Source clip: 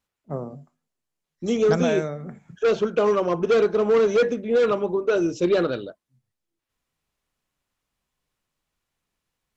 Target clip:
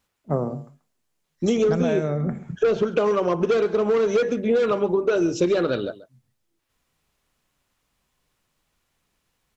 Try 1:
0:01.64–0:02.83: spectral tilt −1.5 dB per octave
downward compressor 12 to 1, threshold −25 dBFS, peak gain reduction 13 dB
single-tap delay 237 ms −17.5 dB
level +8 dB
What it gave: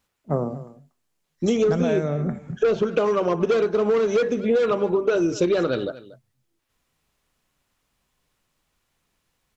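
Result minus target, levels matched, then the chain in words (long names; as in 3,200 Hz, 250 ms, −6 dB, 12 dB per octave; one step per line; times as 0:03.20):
echo 102 ms late
0:01.64–0:02.83: spectral tilt −1.5 dB per octave
downward compressor 12 to 1, threshold −25 dBFS, peak gain reduction 13 dB
single-tap delay 135 ms −17.5 dB
level +8 dB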